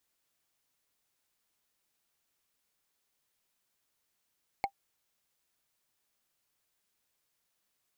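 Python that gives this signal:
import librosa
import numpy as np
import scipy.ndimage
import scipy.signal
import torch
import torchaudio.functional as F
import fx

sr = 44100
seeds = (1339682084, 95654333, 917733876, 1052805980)

y = fx.strike_wood(sr, length_s=0.45, level_db=-21.0, body='bar', hz=793.0, decay_s=0.08, tilt_db=6.0, modes=5)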